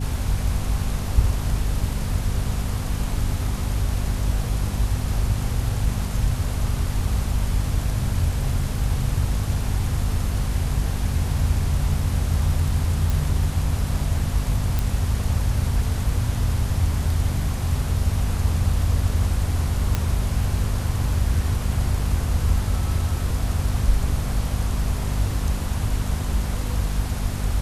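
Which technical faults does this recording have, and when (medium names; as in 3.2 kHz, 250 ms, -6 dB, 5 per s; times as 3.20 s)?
hum 50 Hz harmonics 5 -27 dBFS
13.10 s: pop
14.79 s: pop
19.95 s: pop -8 dBFS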